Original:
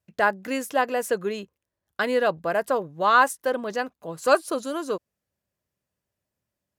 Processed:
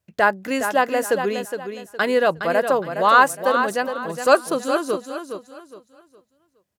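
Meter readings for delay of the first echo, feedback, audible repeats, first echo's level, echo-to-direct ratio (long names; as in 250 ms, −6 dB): 414 ms, 30%, 3, −8.0 dB, −7.5 dB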